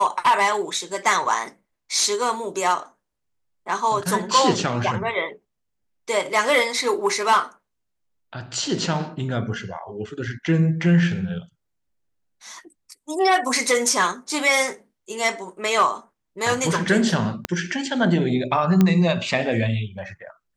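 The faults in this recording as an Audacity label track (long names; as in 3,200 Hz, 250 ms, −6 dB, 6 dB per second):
17.450000	17.450000	click −8 dBFS
18.810000	18.810000	click −6 dBFS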